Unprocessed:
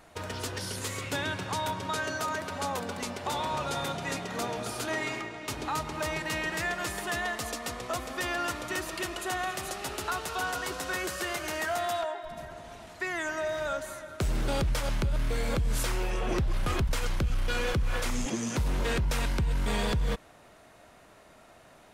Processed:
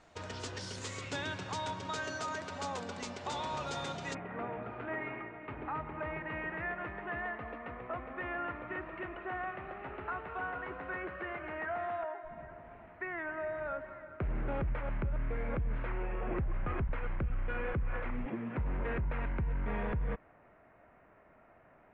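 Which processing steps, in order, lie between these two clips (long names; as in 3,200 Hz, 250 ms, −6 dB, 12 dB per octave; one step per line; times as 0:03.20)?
Butterworth low-pass 7,800 Hz 36 dB per octave, from 0:04.13 2,300 Hz
level −6 dB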